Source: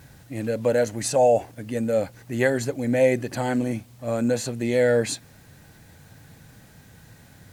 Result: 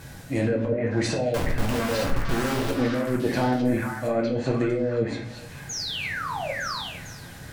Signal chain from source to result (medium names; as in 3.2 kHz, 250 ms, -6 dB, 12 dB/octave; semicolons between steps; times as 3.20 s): low-pass that closes with the level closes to 380 Hz, closed at -16.5 dBFS; bass shelf 210 Hz -3 dB; compressor with a negative ratio -29 dBFS, ratio -1; 1.34–2.71 s: Schmitt trigger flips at -38 dBFS; 5.69–6.52 s: painted sound fall 500–6900 Hz -36 dBFS; on a send: repeats whose band climbs or falls 454 ms, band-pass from 1.5 kHz, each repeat 1.4 oct, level 0 dB; on the sum: simulated room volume 65 m³, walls mixed, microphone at 0.69 m; trim +2.5 dB